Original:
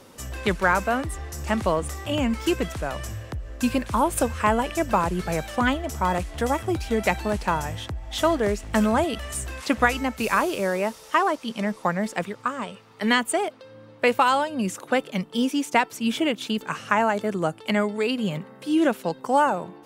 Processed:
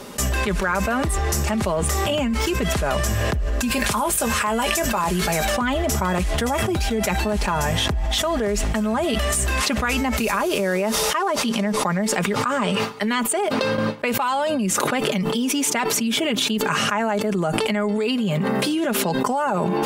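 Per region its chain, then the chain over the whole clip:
3.71–5.45 tilt +2 dB/oct + doubler 18 ms -11.5 dB
whole clip: gate with hold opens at -37 dBFS; comb 4.9 ms, depth 52%; fast leveller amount 100%; gain -7.5 dB

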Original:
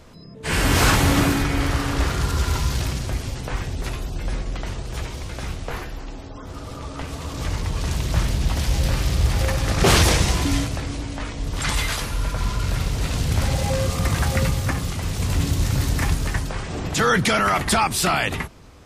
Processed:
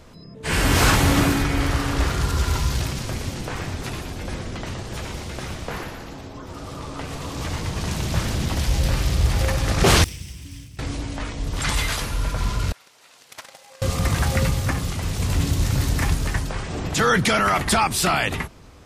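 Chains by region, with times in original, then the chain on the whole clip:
2.86–8.55 HPF 80 Hz + frequency-shifting echo 0.118 s, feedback 55%, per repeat -140 Hz, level -6 dB
10.04–10.79 minimum comb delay 0.37 ms + HPF 67 Hz + passive tone stack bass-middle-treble 6-0-2
12.72–13.82 gate -18 dBFS, range -19 dB + HPF 700 Hz
whole clip: dry

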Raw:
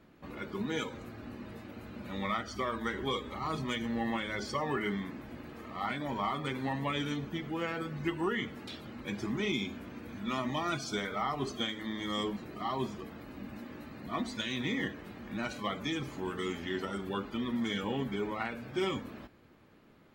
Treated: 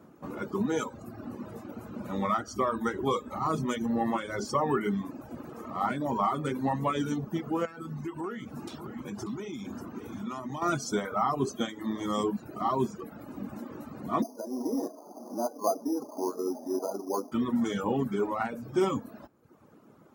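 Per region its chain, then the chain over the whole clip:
7.65–10.62 compressor 5:1, threshold -38 dBFS + bell 560 Hz -5.5 dB 0.42 oct + echo 0.588 s -10 dB
14.22–17.32 Chebyshev band-pass 260–990 Hz, order 3 + bell 670 Hz +10.5 dB 0.27 oct + careless resampling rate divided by 8×, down filtered, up hold
whole clip: HPF 110 Hz 12 dB/oct; band shelf 2800 Hz -11.5 dB; reverb removal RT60 0.87 s; gain +7.5 dB

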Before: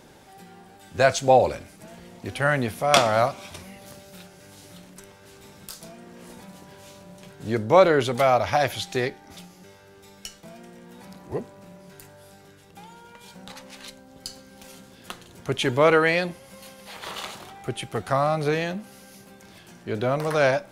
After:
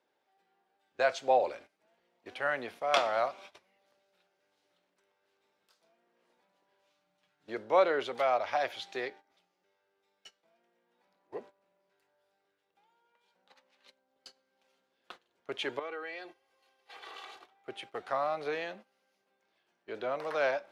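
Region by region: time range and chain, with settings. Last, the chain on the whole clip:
6.9–7.48 bell 500 Hz -11.5 dB 0.9 oct + comb 6.6 ms, depth 90%
15.79–17.44 comb 2.6 ms, depth 74% + compressor 2.5:1, threshold -35 dBFS
whole clip: three-band isolator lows -23 dB, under 330 Hz, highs -16 dB, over 4800 Hz; gate -41 dBFS, range -16 dB; gain -8.5 dB

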